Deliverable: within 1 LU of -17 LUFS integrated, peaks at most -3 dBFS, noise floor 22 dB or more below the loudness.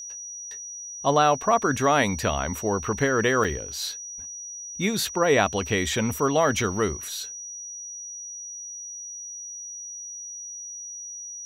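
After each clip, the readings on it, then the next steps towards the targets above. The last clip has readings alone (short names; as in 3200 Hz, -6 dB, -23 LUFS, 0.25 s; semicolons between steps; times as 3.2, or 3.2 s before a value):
dropouts 1; longest dropout 5.6 ms; steady tone 5800 Hz; tone level -35 dBFS; loudness -26.0 LUFS; peak -5.5 dBFS; loudness target -17.0 LUFS
-> interpolate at 3.44, 5.6 ms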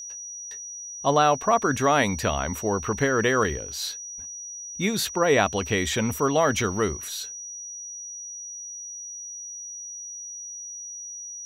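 dropouts 0; steady tone 5800 Hz; tone level -35 dBFS
-> notch 5800 Hz, Q 30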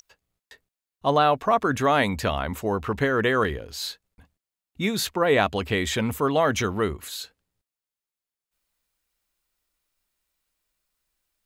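steady tone none; loudness -24.0 LUFS; peak -5.5 dBFS; loudness target -17.0 LUFS
-> gain +7 dB; limiter -3 dBFS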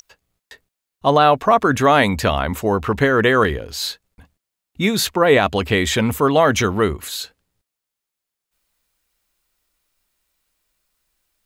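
loudness -17.5 LUFS; peak -3.0 dBFS; noise floor -83 dBFS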